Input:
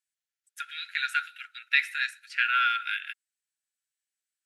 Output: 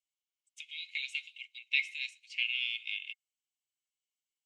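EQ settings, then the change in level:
Chebyshev high-pass with heavy ripple 2,100 Hz, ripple 9 dB
high-frequency loss of the air 160 metres
high-shelf EQ 2,700 Hz +11.5 dB
0.0 dB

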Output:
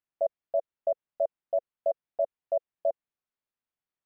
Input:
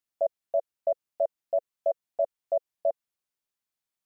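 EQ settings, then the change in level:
high-frequency loss of the air 350 metres
0.0 dB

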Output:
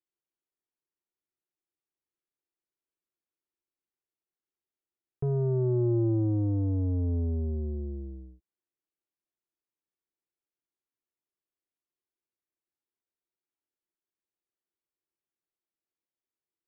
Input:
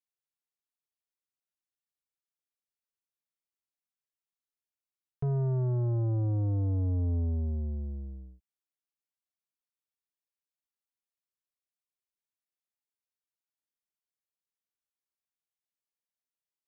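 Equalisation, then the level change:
high-frequency loss of the air 420 metres
parametric band 350 Hz +13 dB 0.54 octaves
0.0 dB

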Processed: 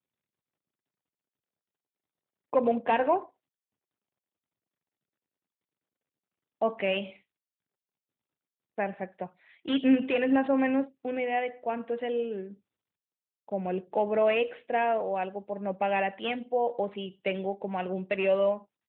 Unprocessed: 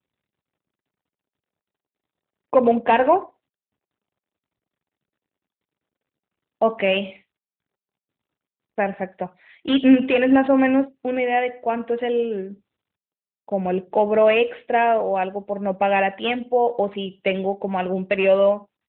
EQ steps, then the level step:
high-pass filter 79 Hz
−8.5 dB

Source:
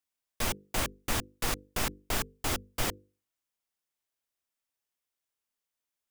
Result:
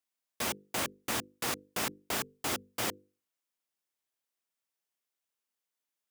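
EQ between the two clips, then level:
high-pass filter 160 Hz 12 dB per octave
−1.0 dB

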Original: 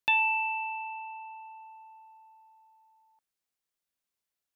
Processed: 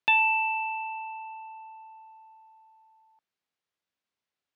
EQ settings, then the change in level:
high-pass filter 81 Hz
low-pass filter 4,200 Hz 12 dB per octave
+3.5 dB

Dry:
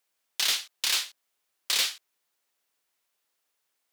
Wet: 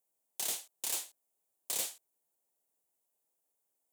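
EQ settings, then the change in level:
high-pass filter 77 Hz
flat-topped bell 2,500 Hz −15 dB 2.6 octaves
−2.0 dB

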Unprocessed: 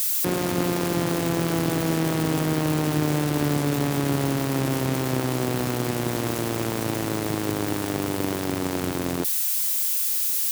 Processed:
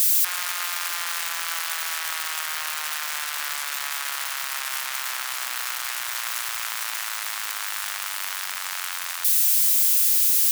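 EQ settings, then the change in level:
high-pass filter 1,200 Hz 24 dB per octave
+5.0 dB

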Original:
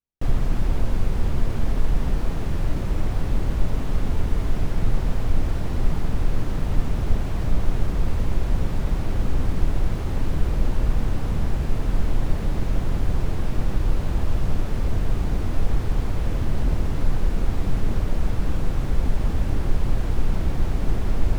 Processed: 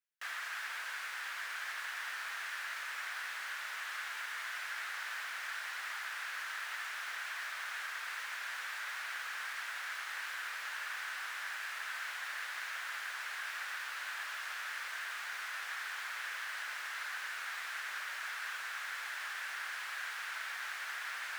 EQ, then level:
four-pole ladder high-pass 1,400 Hz, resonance 55%
+8.5 dB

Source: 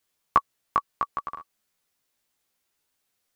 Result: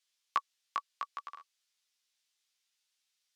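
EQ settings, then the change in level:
resonant band-pass 4,300 Hz, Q 1.7
parametric band 4,300 Hz −4.5 dB 0.5 octaves
+5.0 dB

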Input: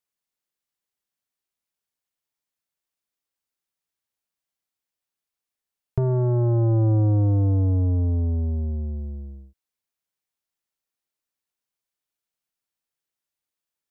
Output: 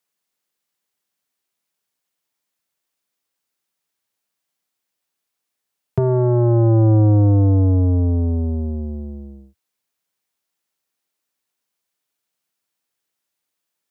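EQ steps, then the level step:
high-pass filter 90 Hz 24 dB per octave
parametric band 130 Hz −5.5 dB 0.33 octaves
+8.0 dB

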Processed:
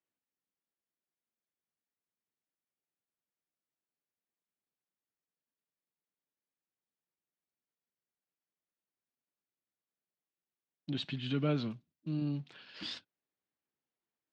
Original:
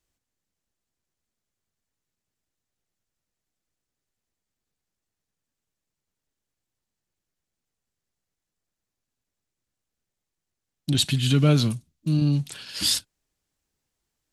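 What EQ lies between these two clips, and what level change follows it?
band-pass filter 200–3,500 Hz
high-frequency loss of the air 140 metres
−9.0 dB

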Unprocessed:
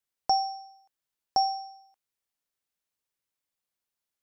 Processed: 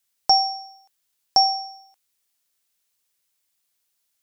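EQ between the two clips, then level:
high-shelf EQ 2,200 Hz +11 dB
+4.0 dB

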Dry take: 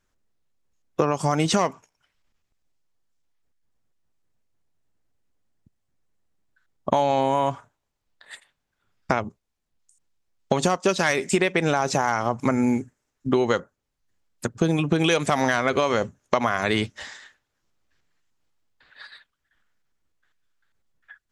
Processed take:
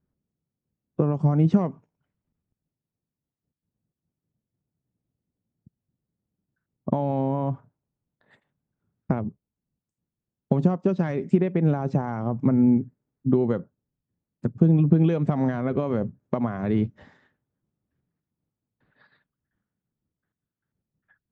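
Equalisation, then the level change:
resonant band-pass 160 Hz, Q 1.3
high-frequency loss of the air 51 metres
+7.0 dB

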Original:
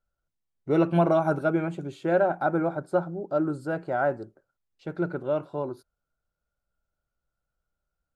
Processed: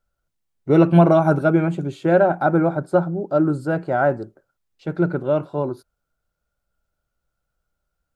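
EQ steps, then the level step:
dynamic equaliser 150 Hz, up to +5 dB, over −38 dBFS, Q 0.73
+6.0 dB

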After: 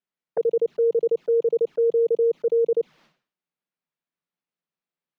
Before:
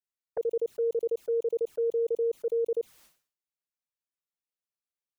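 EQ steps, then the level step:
high-frequency loss of the air 250 metres
low shelf with overshoot 120 Hz −9.5 dB, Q 3
+7.5 dB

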